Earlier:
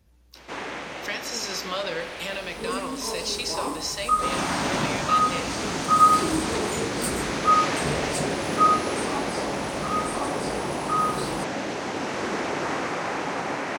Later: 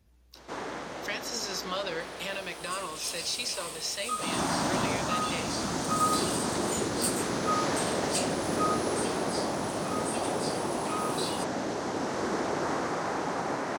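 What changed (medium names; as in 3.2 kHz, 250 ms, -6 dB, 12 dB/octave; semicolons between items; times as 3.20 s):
first sound: add peaking EQ 2.5 kHz -9.5 dB 0.94 oct; second sound: add resonant high-pass 2.7 kHz, resonance Q 3; reverb: off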